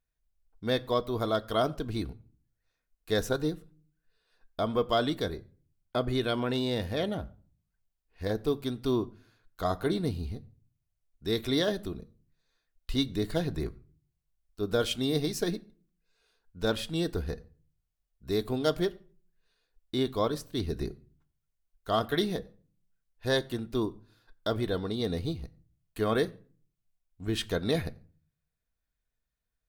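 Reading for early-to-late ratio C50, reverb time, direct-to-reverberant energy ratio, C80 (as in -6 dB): 22.0 dB, no single decay rate, 9.5 dB, 24.5 dB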